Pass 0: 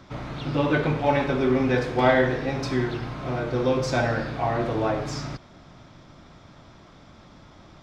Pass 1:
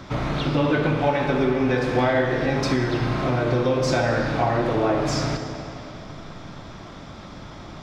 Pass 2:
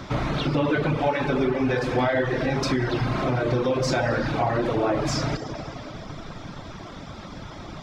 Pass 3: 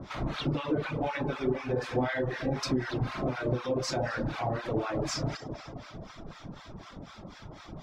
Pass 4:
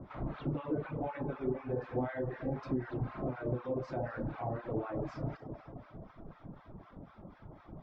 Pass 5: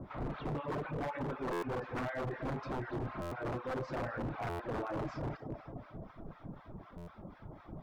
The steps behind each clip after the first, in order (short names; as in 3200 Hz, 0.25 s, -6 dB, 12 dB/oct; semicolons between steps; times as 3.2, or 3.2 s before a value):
compressor 4:1, threshold -29 dBFS, peak gain reduction 13 dB; reverb RT60 3.1 s, pre-delay 5 ms, DRR 5.5 dB; gain +9 dB
reverb removal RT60 0.71 s; in parallel at +2.5 dB: limiter -21.5 dBFS, peak gain reduction 11.5 dB; on the sum: gain -4.5 dB
harmonic tremolo 4 Hz, depth 100%, crossover 880 Hz; gain -3 dB
Bessel low-pass 1100 Hz, order 2; gain -5 dB
wavefolder -33.5 dBFS; stuck buffer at 1.52/3.21/4.49/6.97, samples 512, times 8; gain +2 dB